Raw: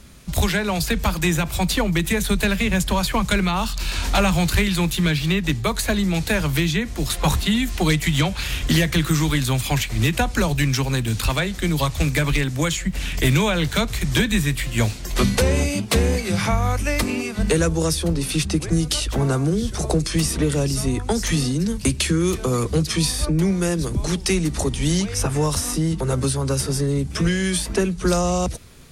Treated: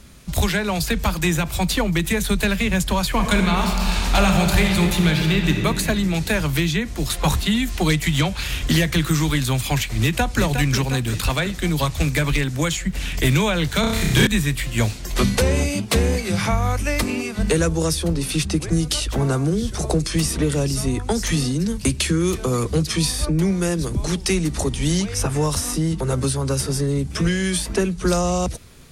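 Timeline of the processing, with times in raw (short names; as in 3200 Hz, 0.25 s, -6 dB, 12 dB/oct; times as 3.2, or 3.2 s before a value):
3.08–5.59 reverb throw, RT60 2.7 s, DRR 2.5 dB
10.01–10.42 echo throw 0.36 s, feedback 60%, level -7.5 dB
13.8–14.27 flutter echo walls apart 5.4 m, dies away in 0.97 s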